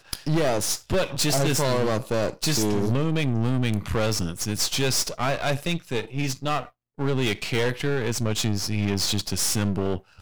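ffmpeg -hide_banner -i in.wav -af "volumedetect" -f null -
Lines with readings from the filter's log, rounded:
mean_volume: -24.4 dB
max_volume: -14.5 dB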